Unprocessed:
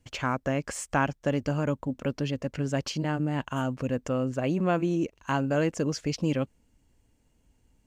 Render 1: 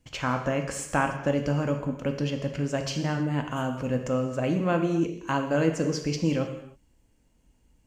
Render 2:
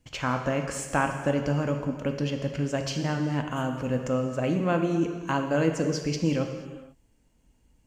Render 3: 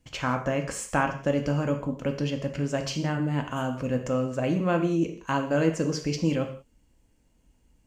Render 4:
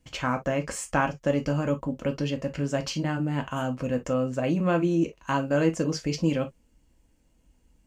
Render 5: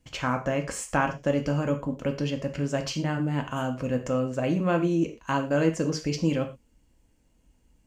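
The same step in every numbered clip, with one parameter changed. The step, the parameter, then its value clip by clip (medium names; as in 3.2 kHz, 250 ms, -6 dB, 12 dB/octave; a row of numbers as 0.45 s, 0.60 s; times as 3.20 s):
gated-style reverb, gate: 340 ms, 520 ms, 210 ms, 80 ms, 140 ms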